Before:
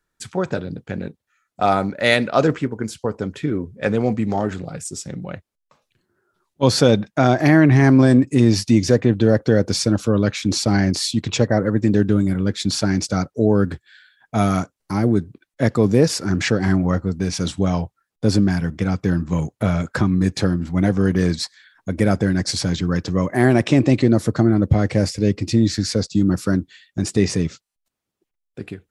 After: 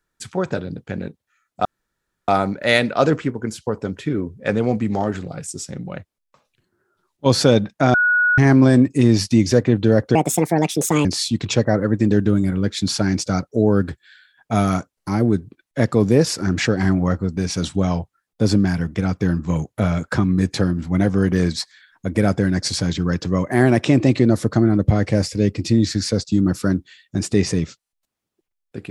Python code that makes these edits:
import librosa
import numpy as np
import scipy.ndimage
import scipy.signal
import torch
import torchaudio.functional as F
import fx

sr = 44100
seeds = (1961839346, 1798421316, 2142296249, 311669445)

y = fx.edit(x, sr, fx.insert_room_tone(at_s=1.65, length_s=0.63),
    fx.bleep(start_s=7.31, length_s=0.44, hz=1460.0, db=-13.0),
    fx.speed_span(start_s=9.52, length_s=1.36, speed=1.51), tone=tone)